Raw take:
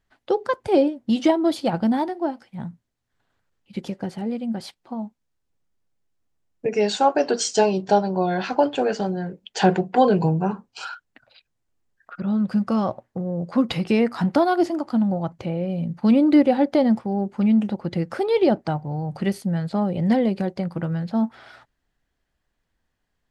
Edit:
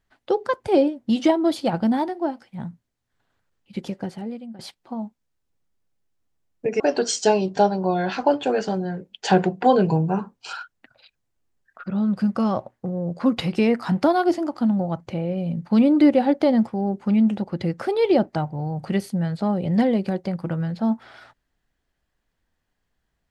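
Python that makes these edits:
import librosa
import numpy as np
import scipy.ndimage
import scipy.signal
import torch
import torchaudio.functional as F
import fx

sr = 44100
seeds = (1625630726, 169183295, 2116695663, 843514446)

y = fx.edit(x, sr, fx.fade_out_to(start_s=3.99, length_s=0.6, floor_db=-16.0),
    fx.cut(start_s=6.8, length_s=0.32), tone=tone)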